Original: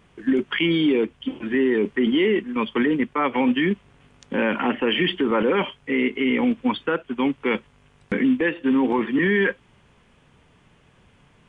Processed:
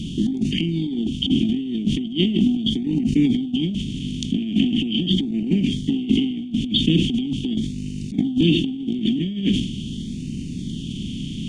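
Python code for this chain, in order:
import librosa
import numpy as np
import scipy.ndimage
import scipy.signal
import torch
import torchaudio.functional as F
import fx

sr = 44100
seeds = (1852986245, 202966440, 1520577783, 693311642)

y = fx.bin_compress(x, sr, power=0.6)
y = scipy.signal.sosfilt(scipy.signal.cheby2(4, 60, [580.0, 1500.0], 'bandstop', fs=sr, output='sos'), y)
y = fx.peak_eq(y, sr, hz=2100.0, db=-5.5, octaves=0.62)
y = fx.over_compress(y, sr, threshold_db=-29.0, ratio=-0.5)
y = fx.filter_lfo_notch(y, sr, shape='sine', hz=0.41, low_hz=800.0, high_hz=3400.0, q=2.2)
y = fx.sustainer(y, sr, db_per_s=67.0)
y = F.gain(torch.from_numpy(y), 9.0).numpy()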